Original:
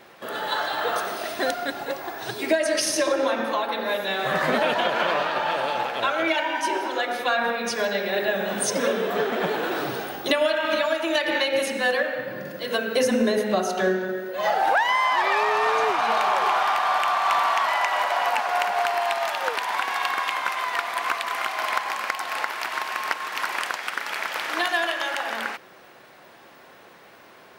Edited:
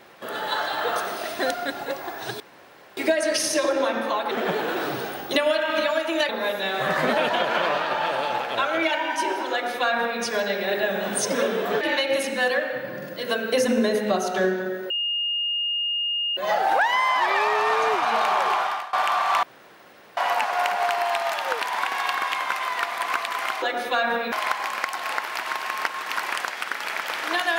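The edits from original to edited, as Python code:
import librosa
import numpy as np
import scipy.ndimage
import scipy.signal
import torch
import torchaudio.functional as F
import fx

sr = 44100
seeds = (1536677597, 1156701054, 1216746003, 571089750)

y = fx.edit(x, sr, fx.insert_room_tone(at_s=2.4, length_s=0.57),
    fx.duplicate(start_s=6.96, length_s=0.7, to_s=21.58),
    fx.move(start_s=9.26, length_s=1.98, to_s=3.74),
    fx.insert_tone(at_s=14.33, length_s=1.47, hz=2840.0, db=-22.5),
    fx.fade_out_to(start_s=16.33, length_s=0.56, curve='qsin', floor_db=-23.0),
    fx.room_tone_fill(start_s=17.39, length_s=0.74), tone=tone)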